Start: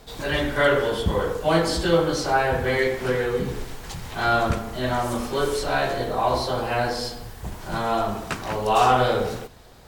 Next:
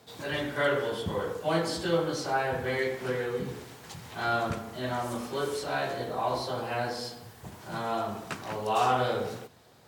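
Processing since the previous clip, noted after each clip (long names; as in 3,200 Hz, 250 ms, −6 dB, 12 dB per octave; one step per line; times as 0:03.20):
high-pass filter 92 Hz 24 dB per octave
level −7.5 dB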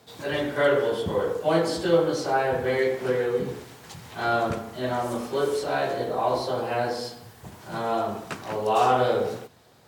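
dynamic equaliser 460 Hz, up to +6 dB, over −41 dBFS, Q 0.85
level +1.5 dB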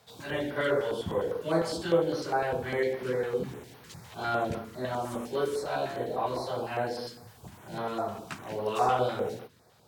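notch on a step sequencer 9.9 Hz 300–7,500 Hz
level −4 dB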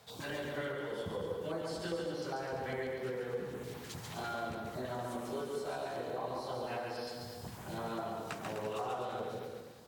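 downward compressor 5 to 1, threshold −40 dBFS, peak gain reduction 18.5 dB
on a send: bouncing-ball delay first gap 140 ms, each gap 0.8×, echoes 5
on the sum: level +1 dB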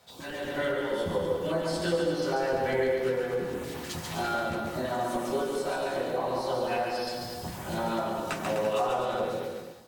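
automatic gain control gain up to 8.5 dB
on a send at −2 dB: convolution reverb RT60 0.15 s, pre-delay 3 ms
on the sum: level −1 dB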